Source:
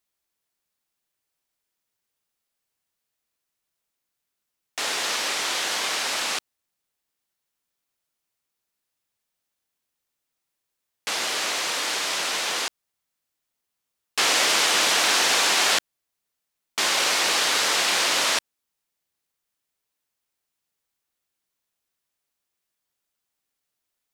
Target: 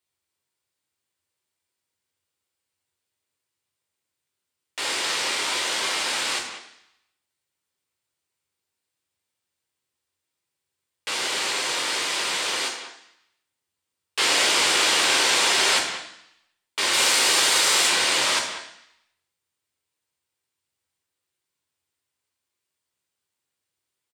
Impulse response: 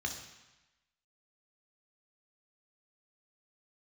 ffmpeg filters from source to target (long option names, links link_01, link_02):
-filter_complex "[0:a]asettb=1/sr,asplit=3[link_01][link_02][link_03];[link_01]atrim=end=16.934[link_04];[link_02]atrim=start=16.93:end=17.88,asetpts=PTS-STARTPTS,afade=type=in:duration=0.004:curve=qsin,afade=type=out:start_time=0.946:duration=0.004:curve=qsin,highshelf=frequency=7100:gain=9.5[link_05];[link_03]atrim=start=17.876[link_06];[link_04][link_05]acrossfade=duration=0.004:curve1=hsin:curve2=qsin[link_07];[link_07][link_06]acrossfade=duration=0.004:curve1=qsin:curve2=hsin,asplit=2[link_08][link_09];[link_09]adelay=190,highpass=300,lowpass=3400,asoftclip=type=hard:threshold=-18dB,volume=-10dB[link_10];[link_08][link_10]amix=inputs=2:normalize=0[link_11];[1:a]atrim=start_sample=2205,asetrate=57330,aresample=44100[link_12];[link_11][link_12]afir=irnorm=-1:irlink=0"